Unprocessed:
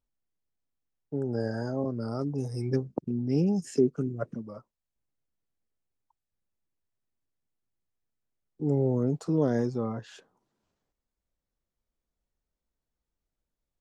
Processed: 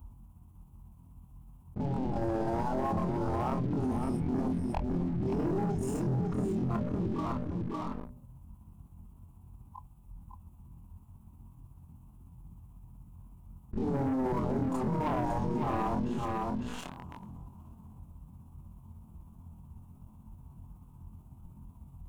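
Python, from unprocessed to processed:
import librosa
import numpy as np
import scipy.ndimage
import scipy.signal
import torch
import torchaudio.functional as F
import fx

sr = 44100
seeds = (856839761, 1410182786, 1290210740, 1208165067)

p1 = fx.riaa(x, sr, side='playback')
p2 = fx.hum_notches(p1, sr, base_hz=60, count=10)
p3 = fx.spec_gate(p2, sr, threshold_db=-10, keep='weak')
p4 = fx.curve_eq(p3, sr, hz=(210.0, 510.0, 990.0, 1800.0, 2700.0, 4600.0, 11000.0), db=(0, -19, 2, -28, -14, -24, 2))
p5 = fx.leveller(p4, sr, passes=3)
p6 = fx.stretch_grains(p5, sr, factor=1.6, grain_ms=124.0)
p7 = p6 + fx.echo_single(p6, sr, ms=555, db=-7.5, dry=0)
y = fx.env_flatten(p7, sr, amount_pct=70)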